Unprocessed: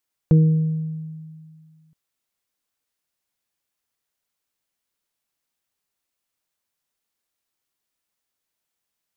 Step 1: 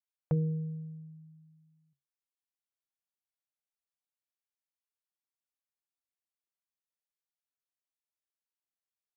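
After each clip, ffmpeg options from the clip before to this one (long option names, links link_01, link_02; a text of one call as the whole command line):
ffmpeg -i in.wav -af "lowshelf=frequency=460:width_type=q:width=1.5:gain=-10.5,afftdn=noise_reduction=15:noise_floor=-57,equalizer=frequency=140:width_type=o:width=0.2:gain=10.5,volume=-5.5dB" out.wav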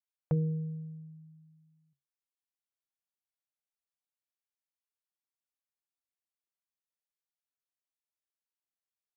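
ffmpeg -i in.wav -af anull out.wav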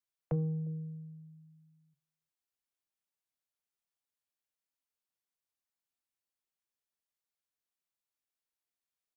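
ffmpeg -i in.wav -filter_complex "[0:a]acrossover=split=130|210|460[link_01][link_02][link_03][link_04];[link_02]asoftclip=type=tanh:threshold=-39.5dB[link_05];[link_03]aecho=1:1:354:0.211[link_06];[link_01][link_05][link_06][link_04]amix=inputs=4:normalize=0" out.wav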